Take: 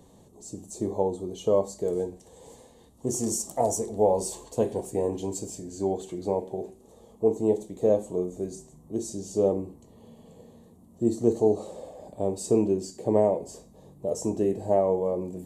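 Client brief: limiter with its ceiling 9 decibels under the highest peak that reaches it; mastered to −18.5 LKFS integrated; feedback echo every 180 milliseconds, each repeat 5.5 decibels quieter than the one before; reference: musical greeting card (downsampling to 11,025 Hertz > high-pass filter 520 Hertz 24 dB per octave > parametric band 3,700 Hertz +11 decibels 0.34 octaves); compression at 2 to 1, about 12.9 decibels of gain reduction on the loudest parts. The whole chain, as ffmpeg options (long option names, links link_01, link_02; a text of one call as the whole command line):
ffmpeg -i in.wav -af "acompressor=threshold=-41dB:ratio=2,alimiter=level_in=6dB:limit=-24dB:level=0:latency=1,volume=-6dB,aecho=1:1:180|360|540|720|900|1080|1260:0.531|0.281|0.149|0.079|0.0419|0.0222|0.0118,aresample=11025,aresample=44100,highpass=frequency=520:width=0.5412,highpass=frequency=520:width=1.3066,equalizer=frequency=3700:width_type=o:width=0.34:gain=11,volume=28.5dB" out.wav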